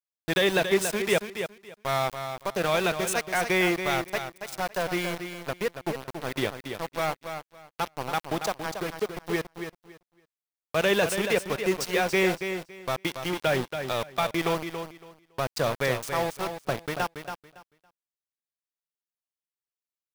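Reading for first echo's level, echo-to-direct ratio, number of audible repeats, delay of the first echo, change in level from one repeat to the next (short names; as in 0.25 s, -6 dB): -8.0 dB, -8.0 dB, 2, 0.28 s, -14.0 dB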